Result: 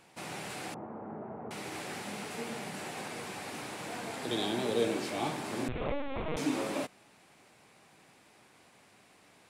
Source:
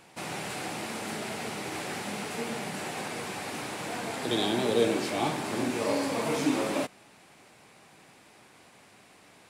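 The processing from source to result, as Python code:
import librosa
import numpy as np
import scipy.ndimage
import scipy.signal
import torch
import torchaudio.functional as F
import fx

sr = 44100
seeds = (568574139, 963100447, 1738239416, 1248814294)

y = fx.lowpass(x, sr, hz=1100.0, slope=24, at=(0.74, 1.51))
y = fx.lpc_vocoder(y, sr, seeds[0], excitation='pitch_kept', order=10, at=(5.68, 6.37))
y = F.gain(torch.from_numpy(y), -5.0).numpy()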